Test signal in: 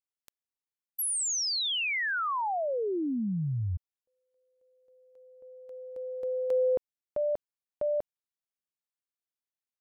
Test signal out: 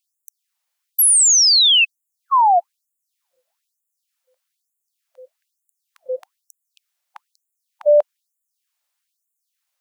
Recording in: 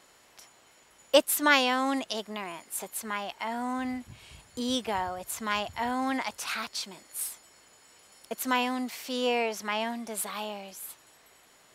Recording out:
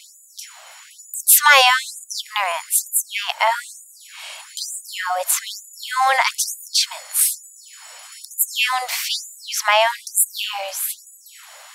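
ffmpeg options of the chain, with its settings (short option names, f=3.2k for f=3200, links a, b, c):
-af "apsyclip=20.5dB,afftfilt=real='re*gte(b*sr/1024,500*pow(6900/500,0.5+0.5*sin(2*PI*1.1*pts/sr)))':imag='im*gte(b*sr/1024,500*pow(6900/500,0.5+0.5*sin(2*PI*1.1*pts/sr)))':win_size=1024:overlap=0.75,volume=-3dB"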